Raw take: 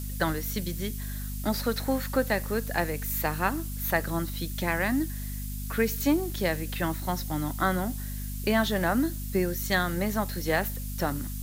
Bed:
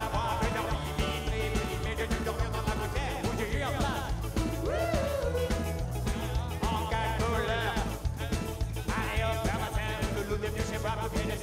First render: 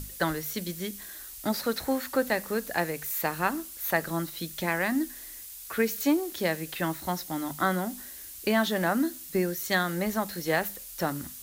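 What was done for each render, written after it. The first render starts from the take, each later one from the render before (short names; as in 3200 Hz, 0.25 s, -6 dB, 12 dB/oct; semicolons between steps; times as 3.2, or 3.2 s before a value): notches 50/100/150/200/250 Hz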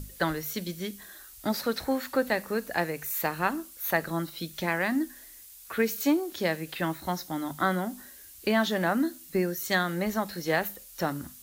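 noise print and reduce 6 dB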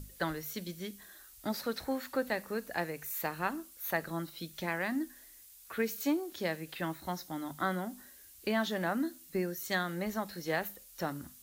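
gain -6.5 dB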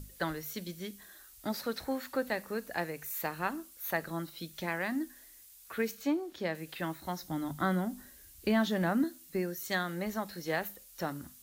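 5.91–6.55 LPF 3400 Hz 6 dB/oct; 7.23–9.04 low shelf 210 Hz +11.5 dB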